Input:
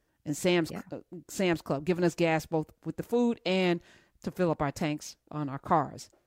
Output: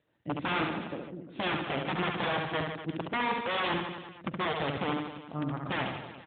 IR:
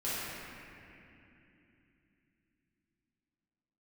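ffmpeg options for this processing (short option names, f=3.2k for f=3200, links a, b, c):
-af "aeval=exprs='(mod(15*val(0)+1,2)-1)/15':c=same,aecho=1:1:70|150.5|243.1|349.5|472:0.631|0.398|0.251|0.158|0.1" -ar 8000 -c:a libopencore_amrnb -b:a 12200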